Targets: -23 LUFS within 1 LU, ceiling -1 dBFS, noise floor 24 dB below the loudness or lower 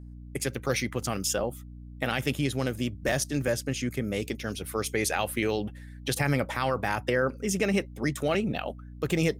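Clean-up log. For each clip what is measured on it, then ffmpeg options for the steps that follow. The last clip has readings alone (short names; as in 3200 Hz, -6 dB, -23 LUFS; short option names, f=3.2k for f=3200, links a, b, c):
hum 60 Hz; harmonics up to 300 Hz; hum level -41 dBFS; loudness -29.5 LUFS; peak -13.0 dBFS; loudness target -23.0 LUFS
-> -af "bandreject=f=60:t=h:w=4,bandreject=f=120:t=h:w=4,bandreject=f=180:t=h:w=4,bandreject=f=240:t=h:w=4,bandreject=f=300:t=h:w=4"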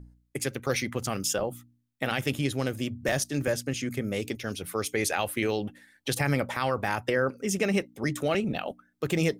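hum none; loudness -29.5 LUFS; peak -13.0 dBFS; loudness target -23.0 LUFS
-> -af "volume=6.5dB"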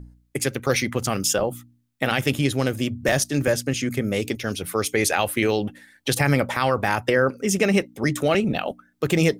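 loudness -23.0 LUFS; peak -6.5 dBFS; noise floor -64 dBFS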